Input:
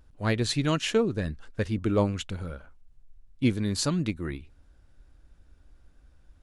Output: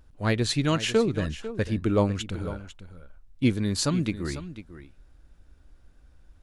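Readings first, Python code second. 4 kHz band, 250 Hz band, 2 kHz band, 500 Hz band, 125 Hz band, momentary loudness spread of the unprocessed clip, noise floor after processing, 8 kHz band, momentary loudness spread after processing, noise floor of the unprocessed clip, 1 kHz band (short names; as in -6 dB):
+1.5 dB, +1.5 dB, +1.5 dB, +1.5 dB, +1.5 dB, 12 LU, -56 dBFS, +1.5 dB, 13 LU, -59 dBFS, +1.5 dB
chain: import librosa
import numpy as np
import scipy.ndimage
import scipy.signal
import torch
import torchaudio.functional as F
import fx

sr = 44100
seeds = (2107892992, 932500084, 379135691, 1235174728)

y = x + 10.0 ** (-13.5 / 20.0) * np.pad(x, (int(498 * sr / 1000.0), 0))[:len(x)]
y = F.gain(torch.from_numpy(y), 1.5).numpy()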